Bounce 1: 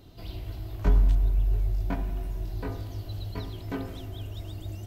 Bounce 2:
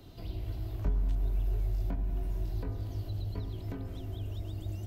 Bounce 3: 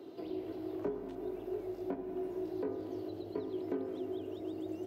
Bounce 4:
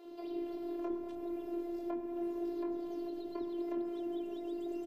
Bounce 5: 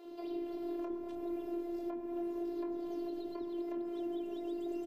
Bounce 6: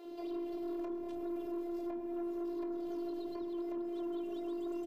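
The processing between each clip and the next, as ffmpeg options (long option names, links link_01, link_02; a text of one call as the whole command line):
ffmpeg -i in.wav -filter_complex "[0:a]acrossover=split=140|640[link_01][link_02][link_03];[link_01]acompressor=threshold=-28dB:ratio=4[link_04];[link_02]acompressor=threshold=-43dB:ratio=4[link_05];[link_03]acompressor=threshold=-56dB:ratio=4[link_06];[link_04][link_05][link_06]amix=inputs=3:normalize=0" out.wav
ffmpeg -i in.wav -af "highpass=frequency=360:width_type=q:width=3.8,highshelf=frequency=2700:gain=-12,volume=2dB" out.wav
ffmpeg -i in.wav -filter_complex "[0:a]afftfilt=real='hypot(re,im)*cos(PI*b)':imag='0':win_size=512:overlap=0.75,acrossover=split=380[link_01][link_02];[link_01]adelay=50[link_03];[link_03][link_02]amix=inputs=2:normalize=0,volume=4dB" out.wav
ffmpeg -i in.wav -af "alimiter=level_in=8dB:limit=-24dB:level=0:latency=1:release=235,volume=-8dB,volume=1dB" out.wav
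ffmpeg -i in.wav -af "asoftclip=type=tanh:threshold=-35.5dB,volume=2dB" out.wav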